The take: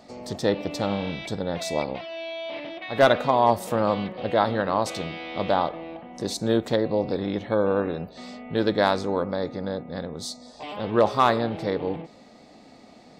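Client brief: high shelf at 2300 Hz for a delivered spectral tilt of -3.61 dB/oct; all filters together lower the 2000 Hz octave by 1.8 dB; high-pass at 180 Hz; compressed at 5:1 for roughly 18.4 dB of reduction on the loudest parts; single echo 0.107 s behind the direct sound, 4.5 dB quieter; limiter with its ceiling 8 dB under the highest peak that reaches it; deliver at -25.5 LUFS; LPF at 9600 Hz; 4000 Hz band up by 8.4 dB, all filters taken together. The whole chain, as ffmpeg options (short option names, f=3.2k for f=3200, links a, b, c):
-af "highpass=180,lowpass=9.6k,equalizer=f=2k:t=o:g=-6.5,highshelf=f=2.3k:g=4,equalizer=f=4k:t=o:g=8,acompressor=threshold=-34dB:ratio=5,alimiter=level_in=2.5dB:limit=-24dB:level=0:latency=1,volume=-2.5dB,aecho=1:1:107:0.596,volume=12dB"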